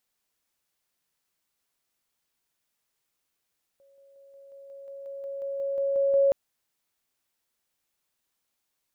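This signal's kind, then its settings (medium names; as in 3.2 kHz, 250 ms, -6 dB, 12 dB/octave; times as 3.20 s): level ladder 553 Hz -56.5 dBFS, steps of 3 dB, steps 14, 0.18 s 0.00 s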